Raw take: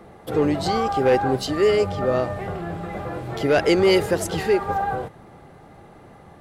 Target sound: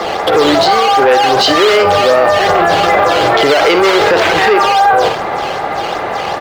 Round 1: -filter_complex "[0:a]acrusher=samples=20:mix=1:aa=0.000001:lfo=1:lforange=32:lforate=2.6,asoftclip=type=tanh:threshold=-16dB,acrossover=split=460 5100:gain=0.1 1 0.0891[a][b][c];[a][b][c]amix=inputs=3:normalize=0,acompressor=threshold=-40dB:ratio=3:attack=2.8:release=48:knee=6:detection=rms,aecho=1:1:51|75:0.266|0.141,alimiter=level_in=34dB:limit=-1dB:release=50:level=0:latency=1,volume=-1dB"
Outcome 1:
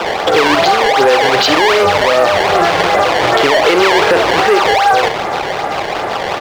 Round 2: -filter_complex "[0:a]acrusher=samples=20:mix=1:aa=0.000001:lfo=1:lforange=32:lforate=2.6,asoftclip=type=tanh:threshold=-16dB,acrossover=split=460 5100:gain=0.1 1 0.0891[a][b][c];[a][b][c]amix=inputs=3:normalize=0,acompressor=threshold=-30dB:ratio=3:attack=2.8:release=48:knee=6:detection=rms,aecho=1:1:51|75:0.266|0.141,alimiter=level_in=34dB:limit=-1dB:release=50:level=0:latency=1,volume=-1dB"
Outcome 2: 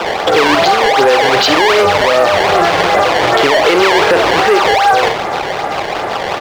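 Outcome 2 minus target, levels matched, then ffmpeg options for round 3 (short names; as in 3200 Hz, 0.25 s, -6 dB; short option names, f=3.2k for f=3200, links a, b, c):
decimation with a swept rate: distortion +9 dB
-filter_complex "[0:a]acrusher=samples=7:mix=1:aa=0.000001:lfo=1:lforange=11.2:lforate=2.6,asoftclip=type=tanh:threshold=-16dB,acrossover=split=460 5100:gain=0.1 1 0.0891[a][b][c];[a][b][c]amix=inputs=3:normalize=0,acompressor=threshold=-30dB:ratio=3:attack=2.8:release=48:knee=6:detection=rms,aecho=1:1:51|75:0.266|0.141,alimiter=level_in=34dB:limit=-1dB:release=50:level=0:latency=1,volume=-1dB"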